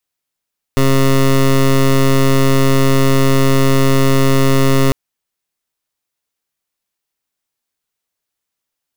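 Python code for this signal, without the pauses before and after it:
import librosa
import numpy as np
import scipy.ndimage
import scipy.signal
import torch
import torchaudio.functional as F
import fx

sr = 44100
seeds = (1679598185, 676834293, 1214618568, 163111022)

y = fx.pulse(sr, length_s=4.15, hz=135.0, level_db=-10.5, duty_pct=17)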